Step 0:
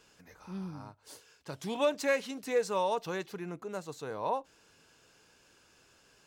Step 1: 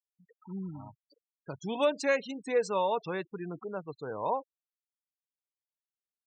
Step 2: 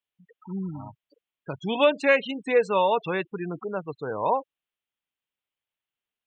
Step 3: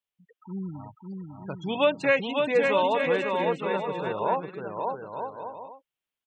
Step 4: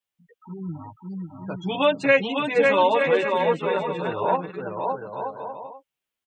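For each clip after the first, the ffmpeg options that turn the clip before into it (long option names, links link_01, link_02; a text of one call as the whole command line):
ffmpeg -i in.wav -af "afftfilt=real='re*gte(hypot(re,im),0.0112)':imag='im*gte(hypot(re,im),0.0112)':win_size=1024:overlap=0.75,volume=1.5dB" out.wav
ffmpeg -i in.wav -af "highshelf=frequency=4000:width_type=q:width=3:gain=-9,volume=6.5dB" out.wav
ffmpeg -i in.wav -af "aecho=1:1:550|907.5|1140|1291|1389:0.631|0.398|0.251|0.158|0.1,volume=-2.5dB" out.wav
ffmpeg -i in.wav -filter_complex "[0:a]asplit=2[link_01][link_02];[link_02]adelay=10.4,afreqshift=0.32[link_03];[link_01][link_03]amix=inputs=2:normalize=1,volume=6.5dB" out.wav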